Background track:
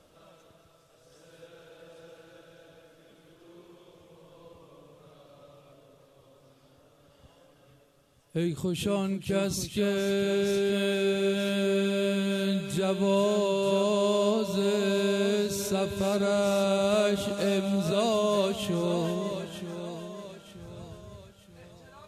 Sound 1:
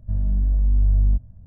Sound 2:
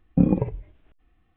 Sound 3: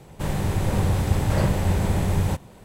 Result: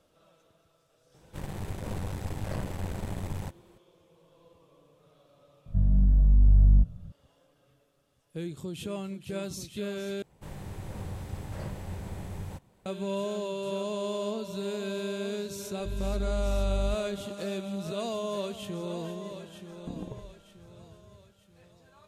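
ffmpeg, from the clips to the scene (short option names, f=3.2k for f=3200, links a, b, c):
-filter_complex "[3:a]asplit=2[a][b];[1:a]asplit=2[c][d];[0:a]volume=-7.5dB[e];[a]aeval=exprs='(tanh(7.94*val(0)+0.8)-tanh(0.8))/7.94':c=same[f];[c]equalizer=f=160:t=o:w=0.47:g=12[g];[2:a]acompressor=threshold=-21dB:ratio=6:attack=3.2:release=140:knee=1:detection=peak[h];[e]asplit=2[i][j];[i]atrim=end=10.224[k];[b]atrim=end=2.64,asetpts=PTS-STARTPTS,volume=-16.5dB[l];[j]atrim=start=12.856[m];[f]atrim=end=2.64,asetpts=PTS-STARTPTS,volume=-8.5dB,afade=t=in:d=0.004:c=hsin,afade=t=out:st=2.636:d=0.004:c=hsin,adelay=1140[n];[g]atrim=end=1.46,asetpts=PTS-STARTPTS,volume=-1.5dB,afade=t=in:d=0.004:c=hsin,afade=t=out:st=1.456:d=0.004:c=hsin,adelay=5660[o];[d]atrim=end=1.46,asetpts=PTS-STARTPTS,volume=-12dB,afade=t=in:d=0.004:c=hsin,afade=t=out:st=1.456:d=0.004:c=hsin,adelay=15770[p];[h]atrim=end=1.36,asetpts=PTS-STARTPTS,volume=-12.5dB,afade=t=in:d=0.004:c=hsin,afade=t=out:st=1.356:d=0.004:c=hsin,adelay=19700[q];[k][l]acrossfade=d=0.004:c1=hsin:c2=hsin[r];[r][m]acrossfade=d=0.004:c1=hsin:c2=hsin[s];[s][n][o][p][q]amix=inputs=5:normalize=0"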